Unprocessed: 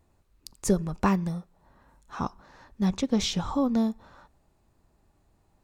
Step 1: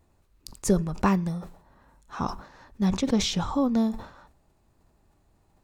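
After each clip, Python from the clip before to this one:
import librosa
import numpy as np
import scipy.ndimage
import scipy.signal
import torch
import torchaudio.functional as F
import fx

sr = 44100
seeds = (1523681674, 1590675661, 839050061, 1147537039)

y = fx.sustainer(x, sr, db_per_s=110.0)
y = F.gain(torch.from_numpy(y), 1.0).numpy()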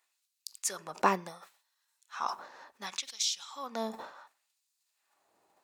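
y = fx.filter_lfo_highpass(x, sr, shape='sine', hz=0.69, low_hz=460.0, high_hz=4800.0, q=0.93)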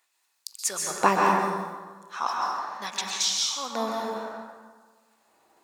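y = fx.rev_plate(x, sr, seeds[0], rt60_s=1.5, hf_ratio=0.55, predelay_ms=115, drr_db=-2.0)
y = F.gain(torch.from_numpy(y), 5.0).numpy()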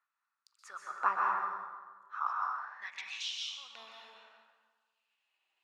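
y = fx.filter_sweep_bandpass(x, sr, from_hz=1300.0, to_hz=2800.0, start_s=2.51, end_s=3.23, q=6.0)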